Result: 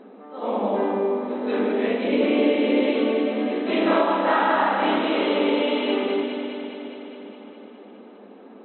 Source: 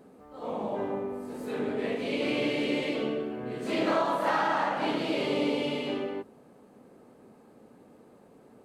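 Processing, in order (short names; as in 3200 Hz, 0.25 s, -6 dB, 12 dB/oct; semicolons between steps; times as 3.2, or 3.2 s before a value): 2.04–2.89 tilt shelf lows +4.5 dB, about 1400 Hz; on a send: echo with dull and thin repeats by turns 0.103 s, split 1100 Hz, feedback 84%, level -7 dB; on the sum: FFT band-pass 190–4100 Hz; 3.83–4.99 doubler 30 ms -5 dB; in parallel at +1.5 dB: vocal rider within 5 dB 0.5 s; on the sum: gain -1 dB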